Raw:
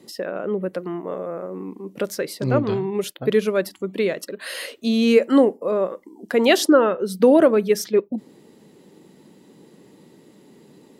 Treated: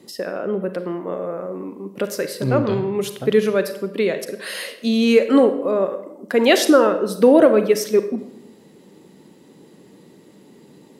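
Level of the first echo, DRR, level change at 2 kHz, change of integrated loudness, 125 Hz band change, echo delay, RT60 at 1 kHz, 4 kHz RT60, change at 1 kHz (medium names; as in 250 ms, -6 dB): no echo, 9.0 dB, +2.0 dB, +2.0 dB, +1.5 dB, no echo, 0.75 s, 0.60 s, +2.0 dB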